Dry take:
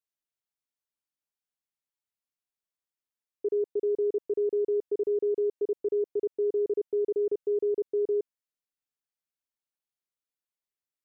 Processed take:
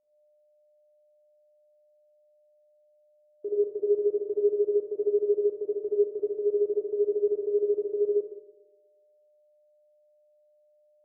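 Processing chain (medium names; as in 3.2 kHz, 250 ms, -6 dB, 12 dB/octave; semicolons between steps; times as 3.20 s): whistle 600 Hz -60 dBFS; Schroeder reverb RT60 1.3 s, combs from 25 ms, DRR -1 dB; upward expansion 1.5:1, over -44 dBFS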